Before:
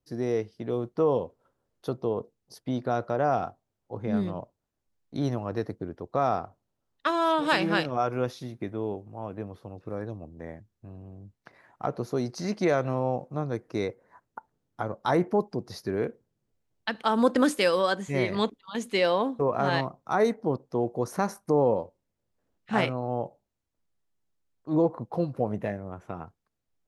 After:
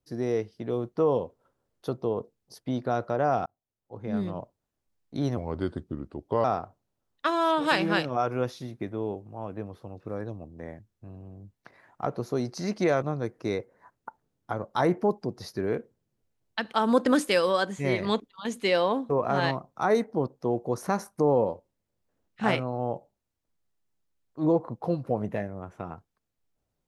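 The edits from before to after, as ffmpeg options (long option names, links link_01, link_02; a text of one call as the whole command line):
ffmpeg -i in.wav -filter_complex "[0:a]asplit=5[link_01][link_02][link_03][link_04][link_05];[link_01]atrim=end=3.46,asetpts=PTS-STARTPTS,afade=type=out:start_time=3.456:duration=0.004:curve=hsin[link_06];[link_02]atrim=start=3.46:end=5.374,asetpts=PTS-STARTPTS,afade=type=in:duration=0.92[link_07];[link_03]atrim=start=5.37:end=6.25,asetpts=PTS-STARTPTS,asetrate=36162,aresample=44100[link_08];[link_04]atrim=start=6.246:end=12.832[link_09];[link_05]atrim=start=13.318[link_10];[link_06][link_07]concat=n=2:v=0:a=1[link_11];[link_11][link_08]acrossfade=duration=0.004:curve1=hsin:curve2=hsin[link_12];[link_12][link_09]acrossfade=duration=0.004:curve1=hsin:curve2=hsin[link_13];[link_13][link_10]acrossfade=duration=0.004:curve1=hsin:curve2=hsin" out.wav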